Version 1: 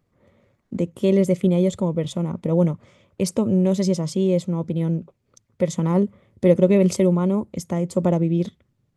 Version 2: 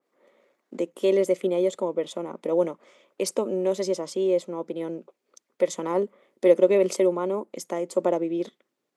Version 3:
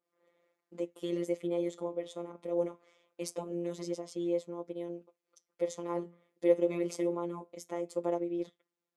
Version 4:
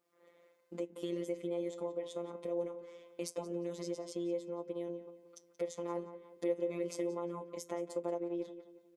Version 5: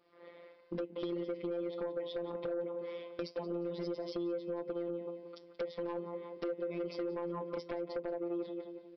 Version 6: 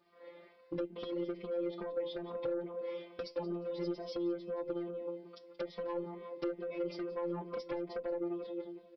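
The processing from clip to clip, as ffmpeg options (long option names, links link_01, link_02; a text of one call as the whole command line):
ffmpeg -i in.wav -af "highpass=frequency=320:width=0.5412,highpass=frequency=320:width=1.3066,adynamicequalizer=threshold=0.00631:dfrequency=2300:dqfactor=0.7:tfrequency=2300:tqfactor=0.7:attack=5:release=100:ratio=0.375:range=2.5:mode=cutabove:tftype=highshelf" out.wav
ffmpeg -i in.wav -af "flanger=delay=4.9:depth=8.6:regen=-77:speed=0.23:shape=sinusoidal,afftfilt=real='hypot(re,im)*cos(PI*b)':imag='0':win_size=1024:overlap=0.75,volume=-3dB" out.wav
ffmpeg -i in.wav -filter_complex "[0:a]acompressor=threshold=-50dB:ratio=2,asplit=2[link_01][link_02];[link_02]adelay=178,lowpass=frequency=3200:poles=1,volume=-12dB,asplit=2[link_03][link_04];[link_04]adelay=178,lowpass=frequency=3200:poles=1,volume=0.41,asplit=2[link_05][link_06];[link_06]adelay=178,lowpass=frequency=3200:poles=1,volume=0.41,asplit=2[link_07][link_08];[link_08]adelay=178,lowpass=frequency=3200:poles=1,volume=0.41[link_09];[link_03][link_05][link_07][link_09]amix=inputs=4:normalize=0[link_10];[link_01][link_10]amix=inputs=2:normalize=0,volume=6.5dB" out.wav
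ffmpeg -i in.wav -af "acompressor=threshold=-43dB:ratio=6,aresample=11025,aeval=exprs='0.0251*sin(PI/2*1.78*val(0)/0.0251)':channel_layout=same,aresample=44100,volume=1.5dB" out.wav
ffmpeg -i in.wav -filter_complex "[0:a]asplit=2[link_01][link_02];[link_02]adelay=2.9,afreqshift=2.3[link_03];[link_01][link_03]amix=inputs=2:normalize=1,volume=3dB" out.wav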